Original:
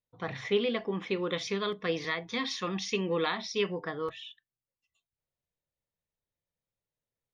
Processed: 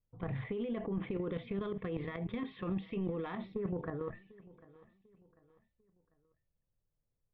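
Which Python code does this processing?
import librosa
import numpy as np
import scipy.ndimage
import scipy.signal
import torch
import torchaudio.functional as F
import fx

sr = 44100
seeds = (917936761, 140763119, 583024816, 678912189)

y = fx.level_steps(x, sr, step_db=17)
y = fx.steep_lowpass(y, sr, hz=fx.steps((0.0, 3400.0), (3.53, 2000.0)), slope=48)
y = fx.over_compress(y, sr, threshold_db=-41.0, ratio=-1.0)
y = fx.tilt_eq(y, sr, slope=-4.0)
y = 10.0 ** (-25.0 / 20.0) * np.tanh(y / 10.0 ** (-25.0 / 20.0))
y = fx.echo_feedback(y, sr, ms=746, feedback_pct=39, wet_db=-21.0)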